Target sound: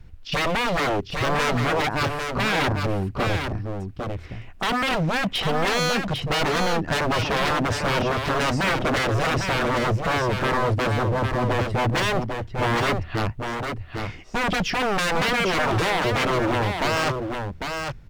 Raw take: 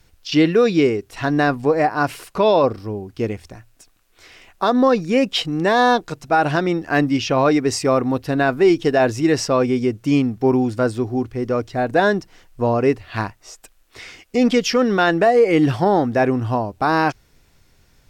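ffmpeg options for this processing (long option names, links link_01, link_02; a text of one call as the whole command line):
ffmpeg -i in.wav -filter_complex "[0:a]bass=frequency=250:gain=12,treble=frequency=4000:gain=-13,aeval=exprs='0.126*(abs(mod(val(0)/0.126+3,4)-2)-1)':channel_layout=same,asplit=2[link_01][link_02];[link_02]aecho=0:1:800:0.531[link_03];[link_01][link_03]amix=inputs=2:normalize=0" out.wav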